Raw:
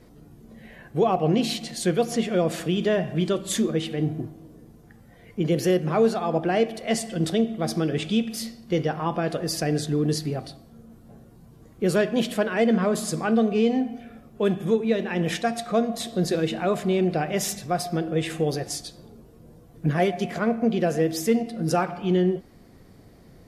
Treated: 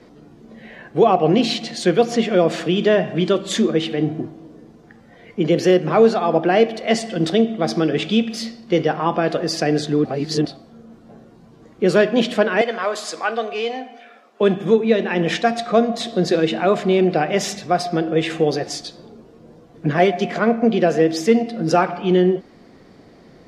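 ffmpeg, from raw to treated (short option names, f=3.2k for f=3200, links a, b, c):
-filter_complex "[0:a]asettb=1/sr,asplit=3[a][b][c];[a]atrim=end=12.614[d];[b]atrim=start=12.61:end=14.41,asetpts=PTS-STARTPTS,afade=t=in:d=0.004:c=qsin,afade=t=out:st=1.796:d=0.004:c=qsin,highpass=700[e];[c]atrim=start=14.406[f];[d][e]acrossfade=d=0.004:c1=hsin:c2=qsin[g];[g][f]acrossfade=d=0.004:c1=qsin:c2=hsin,asplit=3[h][i][j];[h]atrim=end=10.052[k];[i]atrim=start=10.048:end=10.452,asetpts=PTS-STARTPTS,areverse[l];[j]atrim=start=10.448[m];[k][l]acrossfade=d=0.004:c1=hsin:c2=hsin[n];[n][m]acrossfade=d=0.004:c1=hsin:c2=hsin,acrossover=split=180 6500:gain=0.224 1 0.0891[o][p][q];[o][p][q]amix=inputs=3:normalize=0,volume=7.5dB"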